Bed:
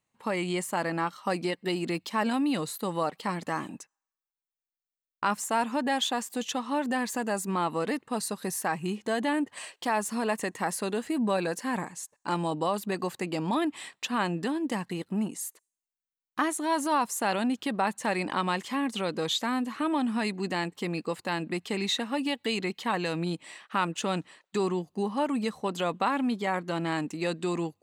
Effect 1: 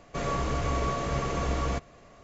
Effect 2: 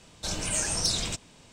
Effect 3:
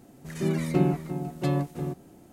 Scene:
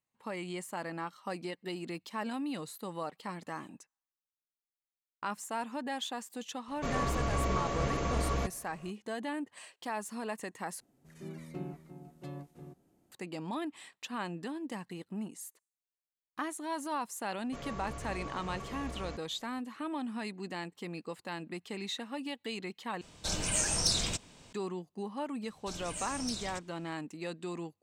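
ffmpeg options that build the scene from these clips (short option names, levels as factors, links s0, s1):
-filter_complex "[1:a]asplit=2[s0][s1];[2:a]asplit=2[s2][s3];[0:a]volume=0.335[s4];[3:a]aresample=32000,aresample=44100[s5];[s4]asplit=3[s6][s7][s8];[s6]atrim=end=10.804[s9];[s5]atrim=end=2.32,asetpts=PTS-STARTPTS,volume=0.126[s10];[s7]atrim=start=13.116:end=23.014[s11];[s2]atrim=end=1.52,asetpts=PTS-STARTPTS,volume=0.794[s12];[s8]atrim=start=24.526[s13];[s0]atrim=end=2.23,asetpts=PTS-STARTPTS,volume=0.708,afade=t=in:d=0.004:c=hsin,afade=t=out:st=2.226:d=0.004:c=hsin,adelay=6680[s14];[s1]atrim=end=2.23,asetpts=PTS-STARTPTS,volume=0.211,afade=t=in:d=0.004:c=hsin,afade=t=out:st=2.226:d=0.004:c=hsin,adelay=17380[s15];[s3]atrim=end=1.52,asetpts=PTS-STARTPTS,volume=0.237,afade=t=in:d=0.004:c=hsin,afade=t=out:st=1.516:d=0.004:c=hsin,adelay=25430[s16];[s9][s10]acrossfade=d=0.004:c1=hsin:c2=hsin[s17];[s17][s11]acrossfade=d=0.004:c1=hsin:c2=hsin[s18];[s18][s12]acrossfade=d=0.004:c1=hsin:c2=hsin[s19];[s19][s13]acrossfade=d=0.004:c1=hsin:c2=hsin[s20];[s20][s14][s15][s16]amix=inputs=4:normalize=0"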